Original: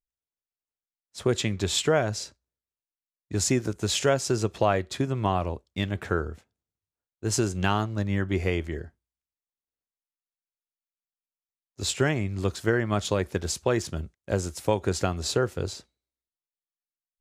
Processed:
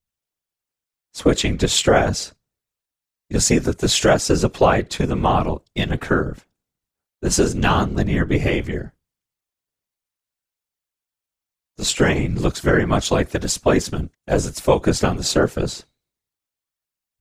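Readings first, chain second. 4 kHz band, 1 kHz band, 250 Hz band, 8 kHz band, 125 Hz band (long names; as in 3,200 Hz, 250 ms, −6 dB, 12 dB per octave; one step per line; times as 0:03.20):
+8.0 dB, +8.5 dB, +8.5 dB, +8.0 dB, +6.0 dB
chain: random phases in short frames
level +8 dB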